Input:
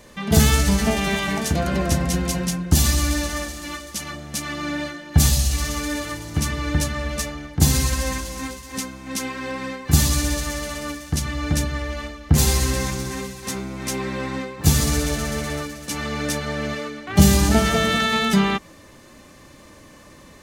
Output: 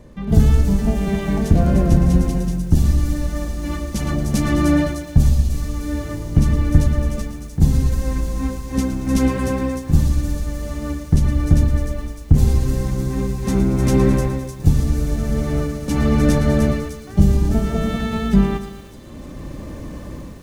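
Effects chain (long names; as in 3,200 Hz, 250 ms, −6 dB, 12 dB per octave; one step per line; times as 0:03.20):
sub-octave generator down 2 octaves, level −5 dB
low-shelf EQ 440 Hz +8.5 dB
automatic gain control gain up to 10 dB
tilt shelving filter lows +5.5 dB, about 1,200 Hz
on a send: delay with a high-pass on its return 303 ms, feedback 60%, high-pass 5,300 Hz, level −4.5 dB
on the sum: feedback echo at a low word length 114 ms, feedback 55%, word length 6 bits, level −11 dB
level −6 dB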